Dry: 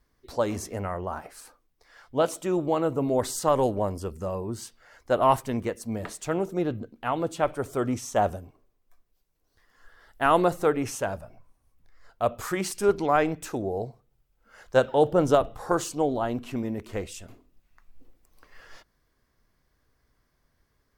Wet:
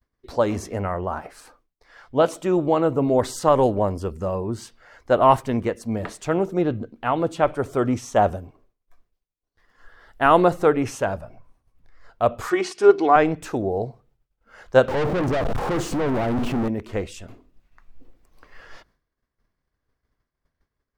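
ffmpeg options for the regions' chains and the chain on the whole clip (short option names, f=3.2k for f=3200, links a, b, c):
-filter_complex "[0:a]asettb=1/sr,asplit=3[a][b][c];[a]atrim=end=12.504[d];[b]atrim=start=12.5:end=13.16,asetpts=PTS-STARTPTS,afade=t=in:d=0.004:c=qsin,afade=t=out:st=0.656:d=0.004:c=qsin,highpass=240,lowpass=6.6k,aecho=1:1:2.7:0.63,atrim=end_sample=29106[e];[c]atrim=start=13.156[f];[d][e]acrossfade=d=0.004:c1=hsin:c2=qsin[g];[g][f]acrossfade=d=0.004:c1=qsin:c2=hsin,asettb=1/sr,asplit=3[h][i][j];[h]atrim=end=14.884[k];[i]atrim=start=14.88:end=16.68,asetpts=PTS-STARTPTS,afade=t=in:d=0.004:c=qsin,afade=t=out:st=1.796:d=0.004:c=qsin,aeval=exprs='val(0)+0.5*0.0531*sgn(val(0))':c=same,tiltshelf=f=880:g=5.5,aeval=exprs='(tanh(20*val(0)+0.4)-tanh(0.4))/20':c=same[l];[j]atrim=start=16.676[m];[k][l]acrossfade=d=0.004:c1=hsin:c2=qsin[n];[n][m]acrossfade=d=0.004:c1=qsin:c2=hsin,agate=range=-33dB:threshold=-59dB:ratio=3:detection=peak,highshelf=f=6.3k:g=-12,volume=5.5dB"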